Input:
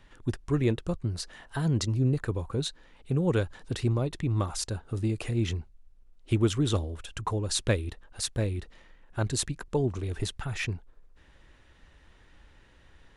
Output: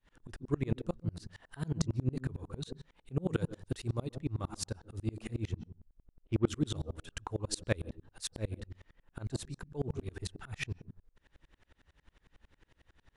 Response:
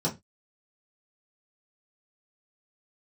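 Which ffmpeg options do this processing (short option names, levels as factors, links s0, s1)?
-filter_complex "[0:a]asettb=1/sr,asplit=3[s0][s1][s2];[s0]atrim=end=3.264[s3];[s1]atrim=start=3.26:end=4.11,asetpts=PTS-STARTPTS,afade=t=in:d=0.004:c=qsin,afade=t=out:st=0.846:d=0.004:c=qsin,highshelf=f=6100:g=9[s4];[s2]atrim=start=4.106[s5];[s3][s4]acrossfade=d=0.004:c1=hsin:c2=qsin[s6];[s6][s5]acrossfade=d=0.004:c1=qsin:c2=hsin,asettb=1/sr,asplit=3[s7][s8][s9];[s7]atrim=end=5.554[s10];[s8]atrim=start=5.55:end=6.47,asetpts=PTS-STARTPTS,afade=t=in:d=0.004:c=qsin,afade=t=out:st=0.916:d=0.004:c=qsin,adynamicsmooth=sensitivity=3:basefreq=1700[s11];[s9]atrim=start=6.466[s12];[s10][s11]acrossfade=d=0.004:c1=hsin:c2=qsin[s13];[s13][s12]acrossfade=d=0.004:c1=qsin:c2=hsin,asplit=2[s14][s15];[s15]highshelf=f=2200:g=-10[s16];[1:a]atrim=start_sample=2205,adelay=129[s17];[s16][s17]afir=irnorm=-1:irlink=0,volume=0.0708[s18];[s14][s18]amix=inputs=2:normalize=0,aeval=exprs='val(0)*pow(10,-32*if(lt(mod(-11*n/s,1),2*abs(-11)/1000),1-mod(-11*n/s,1)/(2*abs(-11)/1000),(mod(-11*n/s,1)-2*abs(-11)/1000)/(1-2*abs(-11)/1000))/20)':c=same"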